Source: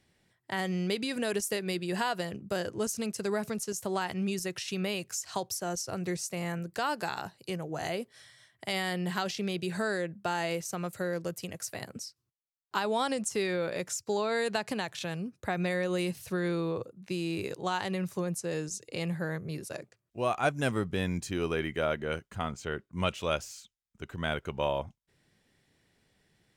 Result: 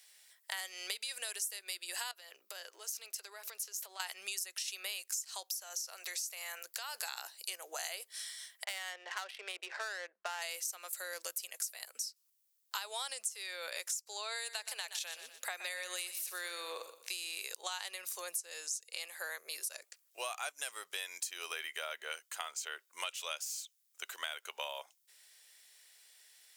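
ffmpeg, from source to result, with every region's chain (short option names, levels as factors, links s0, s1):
-filter_complex "[0:a]asettb=1/sr,asplit=3[s0][s1][s2];[s0]atrim=end=2.114[s3];[s1]atrim=start=2.11:end=4,asetpts=PTS-STARTPTS,afade=t=in:d=0.004:c=qsin,afade=t=out:st=1.886:d=0.004:c=qsin,highpass=250,equalizer=f=8900:w=0.99:g=-11,acompressor=threshold=0.00631:ratio=5:attack=3.2:release=140:knee=1:detection=peak[s4];[s2]atrim=start=3.996[s5];[s3][s4]acrossfade=d=0.004:c1=hsin:c2=qsin[s6];[s6][s5]acrossfade=d=0.004:c1=qsin:c2=hsin,asettb=1/sr,asplit=3[s7][s8][s9];[s7]atrim=end=5.444[s10];[s8]atrim=start=5.44:end=6.95,asetpts=PTS-STARTPTS,afade=t=in:d=0.004:c=qsin,afade=t=out:st=1.506:d=0.004:c=qsin,highpass=470,acompressor=threshold=0.0126:ratio=3:attack=3.2:release=140:knee=1:detection=peak,equalizer=f=8800:t=o:w=0.37:g=-6[s11];[s9]atrim=start=6.946[s12];[s10][s11]acrossfade=d=0.004:c1=hsin:c2=qsin[s13];[s13][s12]acrossfade=d=0.004:c1=qsin:c2=hsin,asettb=1/sr,asplit=3[s14][s15][s16];[s14]atrim=end=8.644[s17];[s15]atrim=start=8.64:end=10.42,asetpts=PTS-STARTPTS,afade=t=in:d=0.004:c=qsin,afade=t=out:st=1.776:d=0.004:c=qsin,highpass=360,lowpass=2600,adynamicsmooth=sensitivity=7:basefreq=1400[s18];[s16]atrim=start=10.416[s19];[s17][s18]acrossfade=d=0.004:c1=hsin:c2=qsin[s20];[s20][s19]acrossfade=d=0.004:c1=qsin:c2=hsin,asettb=1/sr,asplit=3[s21][s22][s23];[s21]atrim=end=14.364[s24];[s22]atrim=start=14.36:end=17.43,asetpts=PTS-STARTPTS,afade=t=in:d=0.004:c=qsin,afade=t=out:st=3.066:d=0.004:c=qsin,highpass=230,aecho=1:1:121|242|363:0.224|0.0627|0.0176,atrim=end_sample=135387[s25];[s23]atrim=start=17.426[s26];[s24][s25]acrossfade=d=0.004:c1=hsin:c2=qsin[s27];[s27][s26]acrossfade=d=0.004:c1=qsin:c2=hsin,highpass=f=480:w=0.5412,highpass=f=480:w=1.3066,aderivative,acompressor=threshold=0.002:ratio=6,volume=6.68"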